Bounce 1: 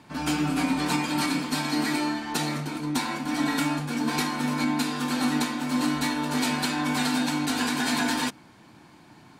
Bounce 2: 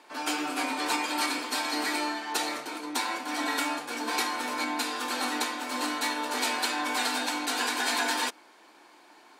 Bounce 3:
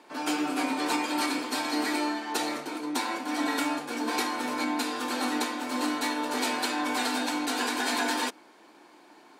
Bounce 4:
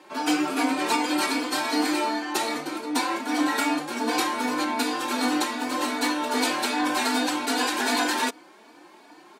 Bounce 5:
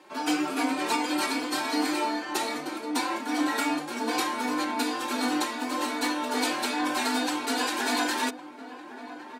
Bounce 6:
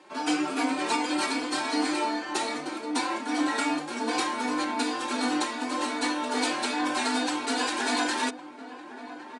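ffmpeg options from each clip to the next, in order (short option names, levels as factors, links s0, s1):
-af "highpass=f=370:w=0.5412,highpass=f=370:w=1.3066"
-af "lowshelf=f=440:g=10.5,volume=0.794"
-filter_complex "[0:a]asplit=2[s0][s1];[s1]adelay=3.4,afreqshift=2.6[s2];[s0][s2]amix=inputs=2:normalize=1,volume=2.24"
-filter_complex "[0:a]asplit=2[s0][s1];[s1]adelay=1108,volume=0.251,highshelf=f=4000:g=-24.9[s2];[s0][s2]amix=inputs=2:normalize=0,volume=0.708"
-af "aresample=22050,aresample=44100"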